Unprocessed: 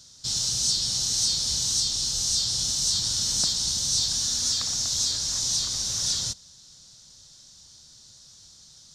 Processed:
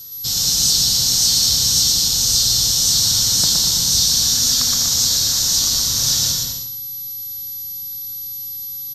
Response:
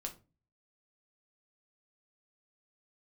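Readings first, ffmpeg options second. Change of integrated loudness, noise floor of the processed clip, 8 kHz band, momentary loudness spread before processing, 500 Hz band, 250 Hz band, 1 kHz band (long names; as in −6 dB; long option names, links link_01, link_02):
+9.5 dB, −29 dBFS, +9.5 dB, 3 LU, +9.5 dB, +11.0 dB, +9.5 dB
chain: -filter_complex "[0:a]aeval=exprs='val(0)+0.01*sin(2*PI*12000*n/s)':channel_layout=same,aecho=1:1:120|204|262.8|304|332.8:0.631|0.398|0.251|0.158|0.1,asplit=2[link_01][link_02];[1:a]atrim=start_sample=2205,asetrate=34398,aresample=44100,adelay=114[link_03];[link_02][link_03]afir=irnorm=-1:irlink=0,volume=-6.5dB[link_04];[link_01][link_04]amix=inputs=2:normalize=0,volume=6.5dB"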